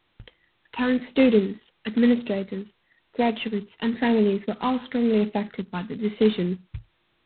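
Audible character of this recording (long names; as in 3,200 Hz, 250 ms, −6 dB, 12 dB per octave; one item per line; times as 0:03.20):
phaser sweep stages 8, 1 Hz, lowest notch 580–1,600 Hz
a quantiser's noise floor 12 bits, dither triangular
G.726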